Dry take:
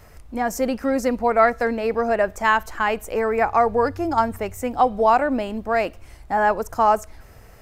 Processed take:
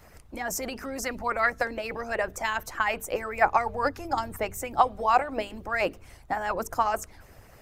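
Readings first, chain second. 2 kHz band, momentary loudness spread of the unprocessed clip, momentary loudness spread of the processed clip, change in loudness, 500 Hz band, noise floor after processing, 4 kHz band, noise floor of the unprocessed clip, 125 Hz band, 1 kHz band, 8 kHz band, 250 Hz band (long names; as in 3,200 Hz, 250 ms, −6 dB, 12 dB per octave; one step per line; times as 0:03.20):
−4.0 dB, 8 LU, 10 LU, −7.0 dB, −10.0 dB, −53 dBFS, −2.0 dB, −47 dBFS, −6.0 dB, −6.5 dB, +1.0 dB, −12.5 dB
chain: mains-hum notches 50/100/150/200/250/300/350/400/450 Hz
harmonic and percussive parts rebalanced harmonic −16 dB
level +1.5 dB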